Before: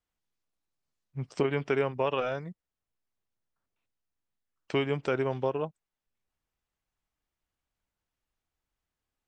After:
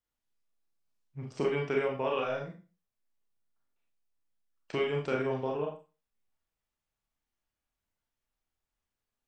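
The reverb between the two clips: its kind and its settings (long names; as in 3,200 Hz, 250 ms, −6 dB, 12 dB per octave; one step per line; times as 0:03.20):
four-comb reverb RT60 0.33 s, combs from 27 ms, DRR −1 dB
level −5.5 dB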